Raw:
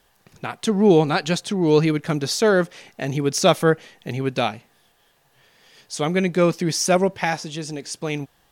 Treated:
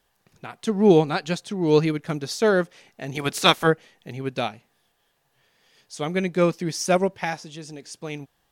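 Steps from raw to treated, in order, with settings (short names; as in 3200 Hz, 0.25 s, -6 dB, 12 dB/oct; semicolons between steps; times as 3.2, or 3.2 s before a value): 3.14–3.66 spectral limiter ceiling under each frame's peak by 18 dB; upward expander 1.5:1, over -27 dBFS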